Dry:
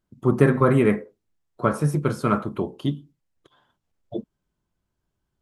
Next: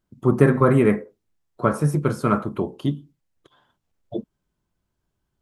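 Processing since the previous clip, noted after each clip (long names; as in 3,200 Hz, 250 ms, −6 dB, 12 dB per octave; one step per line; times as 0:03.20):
dynamic equaliser 3,400 Hz, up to −4 dB, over −46 dBFS, Q 1.2
level +1.5 dB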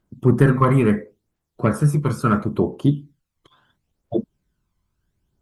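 harmonic generator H 5 −22 dB, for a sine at −1 dBFS
phase shifter 0.73 Hz, delay 1 ms, feedback 52%
level −2 dB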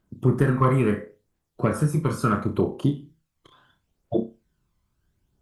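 downward compressor 2 to 1, threshold −20 dBFS, peak gain reduction 6.5 dB
on a send: flutter between parallel walls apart 5.3 metres, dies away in 0.26 s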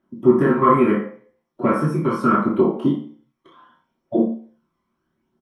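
double-tracking delay 30 ms −10.5 dB
convolution reverb RT60 0.45 s, pre-delay 3 ms, DRR −6.5 dB
level −11 dB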